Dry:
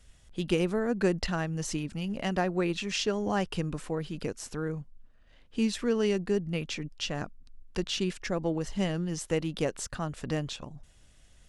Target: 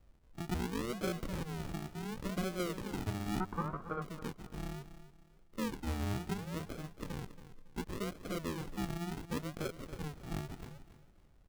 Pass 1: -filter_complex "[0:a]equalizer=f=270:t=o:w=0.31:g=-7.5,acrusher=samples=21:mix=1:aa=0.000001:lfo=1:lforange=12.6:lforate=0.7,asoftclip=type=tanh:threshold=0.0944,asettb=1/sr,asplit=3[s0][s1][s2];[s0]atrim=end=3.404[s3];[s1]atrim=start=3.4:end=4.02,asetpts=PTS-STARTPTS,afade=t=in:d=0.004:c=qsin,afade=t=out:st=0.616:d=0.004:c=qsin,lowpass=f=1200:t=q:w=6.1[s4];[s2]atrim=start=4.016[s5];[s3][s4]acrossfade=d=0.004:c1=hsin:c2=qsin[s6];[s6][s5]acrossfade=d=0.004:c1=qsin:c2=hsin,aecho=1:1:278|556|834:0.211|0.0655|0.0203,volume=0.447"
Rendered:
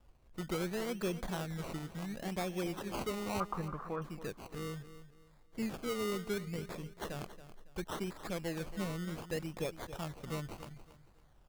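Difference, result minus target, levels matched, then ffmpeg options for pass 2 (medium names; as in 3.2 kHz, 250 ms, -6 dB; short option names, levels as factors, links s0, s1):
decimation with a swept rate: distortion -14 dB
-filter_complex "[0:a]equalizer=f=270:t=o:w=0.31:g=-7.5,acrusher=samples=67:mix=1:aa=0.000001:lfo=1:lforange=40.2:lforate=0.7,asoftclip=type=tanh:threshold=0.0944,asettb=1/sr,asplit=3[s0][s1][s2];[s0]atrim=end=3.404[s3];[s1]atrim=start=3.4:end=4.02,asetpts=PTS-STARTPTS,afade=t=in:d=0.004:c=qsin,afade=t=out:st=0.616:d=0.004:c=qsin,lowpass=f=1200:t=q:w=6.1[s4];[s2]atrim=start=4.016[s5];[s3][s4]acrossfade=d=0.004:c1=hsin:c2=qsin[s6];[s6][s5]acrossfade=d=0.004:c1=qsin:c2=hsin,aecho=1:1:278|556|834:0.211|0.0655|0.0203,volume=0.447"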